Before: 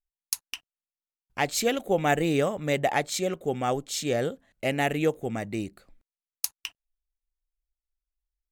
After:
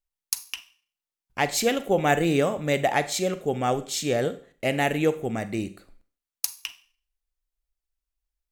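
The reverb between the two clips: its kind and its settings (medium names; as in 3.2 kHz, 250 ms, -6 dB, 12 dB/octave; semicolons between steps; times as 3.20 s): Schroeder reverb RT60 0.44 s, combs from 32 ms, DRR 12.5 dB; trim +2 dB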